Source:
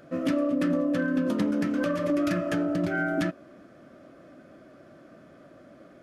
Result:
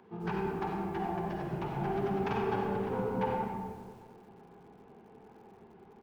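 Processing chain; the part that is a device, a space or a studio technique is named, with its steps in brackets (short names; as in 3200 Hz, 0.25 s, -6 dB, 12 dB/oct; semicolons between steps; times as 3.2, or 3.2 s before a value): monster voice (pitch shift -7 st; formant shift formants -5 st; low shelf 130 Hz +5 dB; reverb RT60 1.8 s, pre-delay 44 ms, DRR -1 dB); three-band isolator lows -23 dB, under 300 Hz, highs -14 dB, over 3300 Hz; 0.46–1.5 Bessel high-pass 190 Hz, order 6; frequency-shifting echo 99 ms, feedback 37%, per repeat -110 Hz, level -13.5 dB; lo-fi delay 91 ms, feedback 35%, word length 9-bit, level -11.5 dB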